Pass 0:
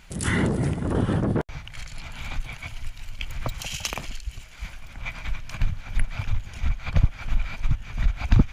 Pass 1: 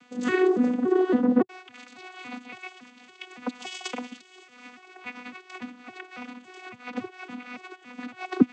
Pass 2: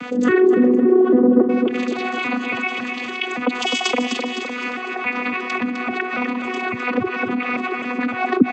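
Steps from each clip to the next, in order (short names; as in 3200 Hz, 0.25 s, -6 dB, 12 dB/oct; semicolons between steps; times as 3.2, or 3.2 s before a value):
arpeggiated vocoder bare fifth, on B3, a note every 0.28 s; gain +2 dB
formant sharpening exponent 1.5; feedback echo 0.256 s, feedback 33%, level -9.5 dB; fast leveller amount 50%; gain +4 dB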